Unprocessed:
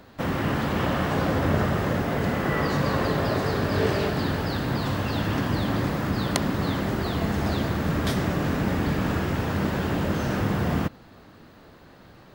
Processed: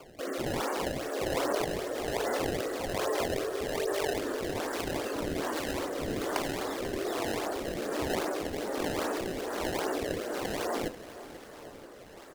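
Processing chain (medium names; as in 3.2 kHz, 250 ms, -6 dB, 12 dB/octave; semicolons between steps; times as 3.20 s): high-pass 370 Hz 24 dB/octave; spectral gate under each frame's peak -15 dB strong; tilt shelf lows +3 dB; in parallel at 0 dB: compressor with a negative ratio -36 dBFS; on the sum: flange 0.59 Hz, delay 9.2 ms, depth 6.2 ms, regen -70%; decimation with a swept rate 22×, swing 160% 2.5 Hz; rotary cabinet horn 1.2 Hz; feedback delay 489 ms, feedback 60%, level -15 dB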